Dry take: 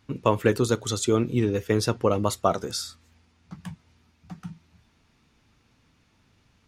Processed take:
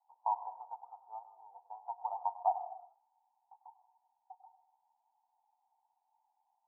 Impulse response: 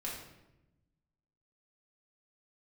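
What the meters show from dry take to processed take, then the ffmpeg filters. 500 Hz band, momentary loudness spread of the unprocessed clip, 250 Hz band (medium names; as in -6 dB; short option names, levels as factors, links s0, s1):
-24.0 dB, 19 LU, under -40 dB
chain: -filter_complex "[0:a]asuperpass=centerf=830:order=8:qfactor=3.7,asplit=2[s0][s1];[1:a]atrim=start_sample=2205,afade=t=out:st=0.38:d=0.01,atrim=end_sample=17199,adelay=97[s2];[s1][s2]afir=irnorm=-1:irlink=0,volume=0.251[s3];[s0][s3]amix=inputs=2:normalize=0,volume=1.12"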